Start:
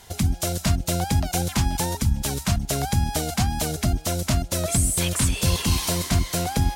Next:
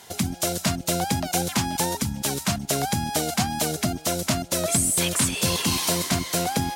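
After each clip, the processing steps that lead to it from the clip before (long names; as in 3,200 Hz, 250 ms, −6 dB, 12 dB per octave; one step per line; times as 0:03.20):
high-pass filter 170 Hz 12 dB per octave
level +2 dB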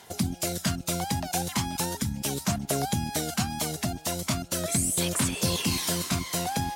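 phase shifter 0.38 Hz, delay 1.2 ms, feedback 34%
level −5 dB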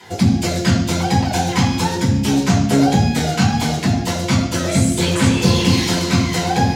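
convolution reverb RT60 0.85 s, pre-delay 3 ms, DRR −7.5 dB
level −5 dB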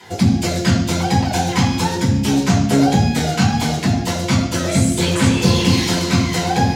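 no processing that can be heard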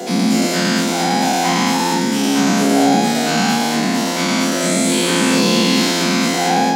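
every bin's largest magnitude spread in time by 240 ms
Butterworth high-pass 200 Hz 36 dB per octave
level −3 dB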